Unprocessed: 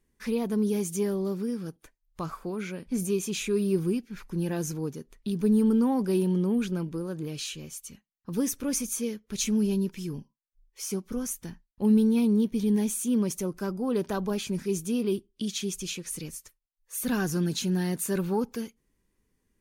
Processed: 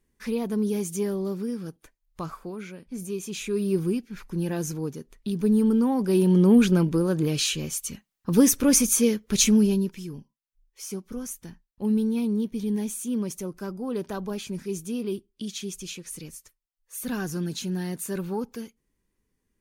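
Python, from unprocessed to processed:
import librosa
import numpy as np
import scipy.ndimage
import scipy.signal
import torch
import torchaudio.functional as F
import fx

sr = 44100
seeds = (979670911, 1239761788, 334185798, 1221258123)

y = fx.gain(x, sr, db=fx.line((2.21, 0.5), (2.91, -6.5), (3.76, 1.5), (5.98, 1.5), (6.54, 10.0), (9.37, 10.0), (10.09, -2.5)))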